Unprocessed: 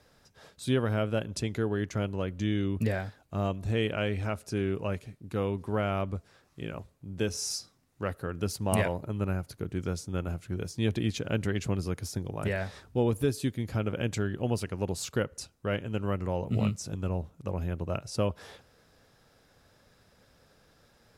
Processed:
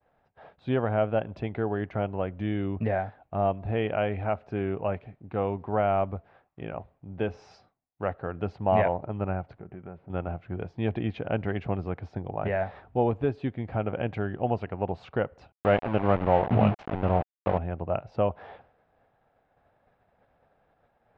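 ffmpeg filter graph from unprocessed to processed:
ffmpeg -i in.wav -filter_complex "[0:a]asettb=1/sr,asplit=3[link_01][link_02][link_03];[link_01]atrim=end=9.594[link_04];[link_02]atrim=start=9.59:end=10.1,asetpts=PTS-STARTPTS,afade=type=in:duration=0.004:curve=qsin,afade=type=out:start_time=0.506:duration=0.004:curve=qsin,aecho=1:1:5.2:0.35,atrim=end_sample=22491,acompressor=threshold=-41dB:ratio=3:attack=3.2:release=140:knee=1:detection=peak,lowpass=frequency=2500:width=0.5412,lowpass=frequency=2500:width=1.3066[link_05];[link_03]atrim=start=10.096[link_06];[link_04][link_05]acrossfade=duration=0.004:curve1=hsin:curve2=qsin[link_07];[link_07][link_06]acrossfade=duration=0.004:curve1=qsin:curve2=hsin,asettb=1/sr,asplit=3[link_08][link_09][link_10];[link_08]atrim=end=15.524[link_11];[link_09]atrim=start=15.52:end=17.58,asetpts=PTS-STARTPTS,afade=type=in:duration=0.004:curve=qsin,afade=type=out:start_time=2.056:duration=0.004:curve=qsin,acontrast=41,aeval=exprs='val(0)*gte(abs(val(0)),0.0376)':channel_layout=same[link_12];[link_10]atrim=start=17.576[link_13];[link_11][link_12]acrossfade=duration=0.004:curve1=hsin:curve2=qsin[link_14];[link_14][link_13]acrossfade=duration=0.004:curve1=qsin:curve2=hsin,lowpass=frequency=2700:width=0.5412,lowpass=frequency=2700:width=1.3066,agate=range=-33dB:threshold=-56dB:ratio=3:detection=peak,equalizer=frequency=740:width=2:gain=13,volume=-1dB" out.wav

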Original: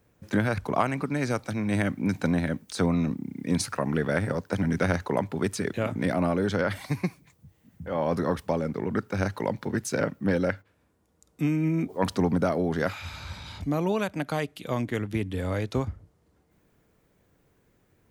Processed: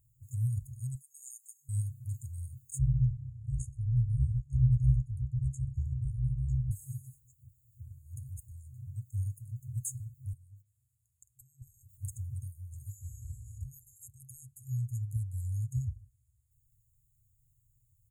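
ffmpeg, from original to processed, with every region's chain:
ffmpeg -i in.wav -filter_complex "[0:a]asettb=1/sr,asplit=3[link_01][link_02][link_03];[link_01]atrim=end=0.954[link_04];[link_02]atrim=start=0.95:end=1.69,asetpts=PTS-STARTPTS,afade=type=in:duration=0.004:curve=qsin,afade=type=out:start_time=0.736:duration=0.004:curve=qsin,aecho=1:1:7:0.68,atrim=end_sample=32634,afreqshift=290[link_05];[link_03]atrim=start=1.686[link_06];[link_04][link_05]acrossfade=duration=0.004:curve1=hsin:curve2=qsin[link_07];[link_07][link_06]acrossfade=duration=0.004:curve1=qsin:curve2=hsin,asettb=1/sr,asplit=3[link_08][link_09][link_10];[link_08]atrim=end=2.784[link_11];[link_09]atrim=start=2.78:end=6.71,asetpts=PTS-STARTPTS,afade=type=in:duration=0.004:curve=qsin,afade=type=out:start_time=3.926:duration=0.004:curve=qsin,lowpass=4900,lowshelf=frequency=320:gain=11.5,aeval=exprs='val(0)*sin(2*PI*35*n/s)':channel_layout=same[link_12];[link_10]atrim=start=6.706[link_13];[link_11][link_12]acrossfade=duration=0.004:curve1=hsin:curve2=qsin[link_14];[link_14][link_13]acrossfade=duration=0.004:curve1=qsin:curve2=hsin,asettb=1/sr,asplit=3[link_15][link_16][link_17];[link_15]atrim=end=10.334[link_18];[link_16]atrim=start=10.33:end=11.62,asetpts=PTS-STARTPTS,afade=type=in:duration=0.004:curve=qsin,afade=type=out:start_time=1.286:duration=0.004:curve=qsin,highpass=97,acompressor=threshold=-33dB:ratio=16:attack=3.2:release=140:knee=1:detection=peak[link_19];[link_17]atrim=start=11.616[link_20];[link_18][link_19]acrossfade=duration=0.004:curve1=hsin:curve2=qsin[link_21];[link_21][link_20]acrossfade=duration=0.004:curve1=qsin:curve2=hsin,afftfilt=real='re*(1-between(b*sr/4096,130,6500))':imag='im*(1-between(b*sr/4096,130,6500))':win_size=4096:overlap=0.75,aecho=1:1:6.7:0.32" out.wav

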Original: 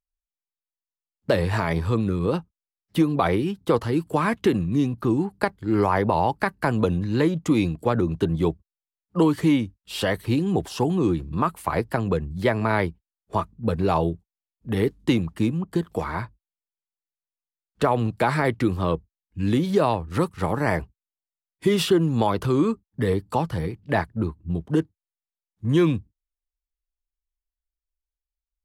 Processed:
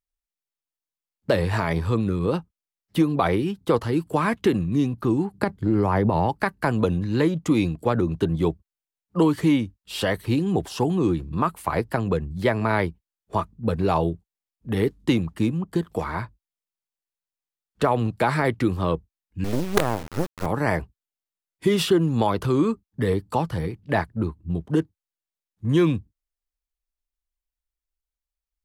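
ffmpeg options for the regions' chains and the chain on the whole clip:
ffmpeg -i in.wav -filter_complex "[0:a]asettb=1/sr,asplit=3[link_01][link_02][link_03];[link_01]atrim=end=5.344[link_04];[link_02]atrim=start=5.34:end=6.29,asetpts=PTS-STARTPTS,afade=type=in:duration=0.004:curve=qsin,afade=type=out:start_time=0.946:duration=0.004:curve=qsin,highpass=81,lowshelf=frequency=410:gain=11.5,acompressor=threshold=-16dB:ratio=5:attack=3.2:release=140:knee=1:detection=peak[link_05];[link_03]atrim=start=6.286[link_06];[link_04][link_05]acrossfade=duration=0.004:curve1=hsin:curve2=qsin[link_07];[link_07][link_06]acrossfade=duration=0.004:curve1=qsin:curve2=hsin,asettb=1/sr,asplit=3[link_08][link_09][link_10];[link_08]atrim=end=19.444[link_11];[link_09]atrim=start=19.44:end=20.46,asetpts=PTS-STARTPTS,afade=type=in:duration=0.004:curve=qsin,afade=type=out:start_time=1.016:duration=0.004:curve=qsin,lowpass=1100,acrusher=bits=3:dc=4:mix=0:aa=0.000001[link_12];[link_10]atrim=start=20.456[link_13];[link_11][link_12]acrossfade=duration=0.004:curve1=hsin:curve2=qsin[link_14];[link_14][link_13]acrossfade=duration=0.004:curve1=qsin:curve2=hsin" out.wav

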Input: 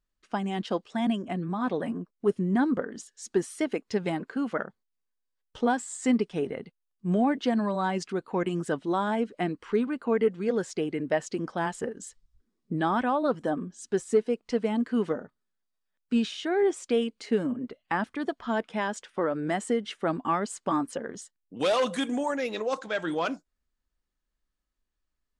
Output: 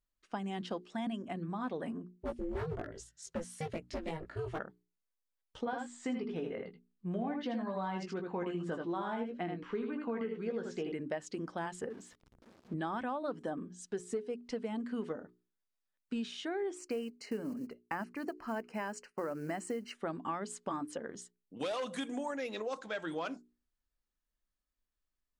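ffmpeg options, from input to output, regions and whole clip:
ffmpeg -i in.wav -filter_complex "[0:a]asettb=1/sr,asplit=3[link_01][link_02][link_03];[link_01]atrim=end=2.174[link_04];[link_02]atrim=start=2.17:end=4.59,asetpts=PTS-STARTPTS,afade=type=in:duration=0.004:curve=qsin,afade=type=out:start_time=2.416:duration=0.004:curve=qsin,aeval=exprs='val(0)*sin(2*PI*160*n/s)':channel_layout=same,asoftclip=type=hard:threshold=-23dB,asplit=2[link_05][link_06];[link_06]adelay=18,volume=-3dB[link_07];[link_05][link_07]amix=inputs=2:normalize=0,atrim=end_sample=106722[link_08];[link_03]atrim=start=4.586[link_09];[link_04][link_08]acrossfade=duration=0.004:curve1=hsin:curve2=qsin[link_10];[link_10][link_09]acrossfade=duration=0.004:curve1=qsin:curve2=hsin,asettb=1/sr,asplit=3[link_11][link_12][link_13];[link_11]atrim=end=5.654[link_14];[link_12]atrim=start=5.65:end=10.92,asetpts=PTS-STARTPTS,afade=type=in:duration=0.004:curve=qsin,afade=type=out:start_time=5.266:duration=0.004:curve=qsin,lowpass=4400,asplit=2[link_15][link_16];[link_16]adelay=17,volume=-7dB[link_17];[link_15][link_17]amix=inputs=2:normalize=0,atrim=end_sample=232407,aecho=1:1:79:0.531,atrim=end_sample=232407[link_18];[link_13]atrim=start=10.916[link_19];[link_14][link_18]acrossfade=duration=0.004:curve1=hsin:curve2=qsin[link_20];[link_20][link_19]acrossfade=duration=0.004:curve1=qsin:curve2=hsin,asettb=1/sr,asplit=3[link_21][link_22][link_23];[link_21]atrim=end=11.904[link_24];[link_22]atrim=start=11.9:end=12.74,asetpts=PTS-STARTPTS,afade=type=in:duration=0.004:curve=qsin,afade=type=out:start_time=0.836:duration=0.004:curve=qsin,aeval=exprs='val(0)+0.5*0.00668*sgn(val(0))':channel_layout=same,highpass=frequency=140:poles=1,aemphasis=mode=reproduction:type=75fm[link_25];[link_23]atrim=start=12.736[link_26];[link_24][link_25]acrossfade=duration=0.004:curve1=hsin:curve2=qsin[link_27];[link_27][link_26]acrossfade=duration=0.004:curve1=qsin:curve2=hsin,asettb=1/sr,asplit=3[link_28][link_29][link_30];[link_28]atrim=end=16.784[link_31];[link_29]atrim=start=16.78:end=19.95,asetpts=PTS-STARTPTS,afade=type=in:duration=0.004:curve=qsin,afade=type=out:start_time=3.166:duration=0.004:curve=qsin,agate=range=-33dB:threshold=-52dB:ratio=3:release=100:detection=peak,acrusher=bits=7:mode=log:mix=0:aa=0.000001,asuperstop=centerf=3500:order=8:qfactor=3.4[link_32];[link_30]atrim=start=19.946[link_33];[link_31][link_32]acrossfade=duration=0.004:curve1=hsin:curve2=qsin[link_34];[link_34][link_33]acrossfade=duration=0.004:curve1=qsin:curve2=hsin,bandreject=frequency=60:width_type=h:width=6,bandreject=frequency=120:width_type=h:width=6,bandreject=frequency=180:width_type=h:width=6,bandreject=frequency=240:width_type=h:width=6,bandreject=frequency=300:width_type=h:width=6,bandreject=frequency=360:width_type=h:width=6,bandreject=frequency=420:width_type=h:width=6,acompressor=threshold=-28dB:ratio=4,volume=-6dB" out.wav

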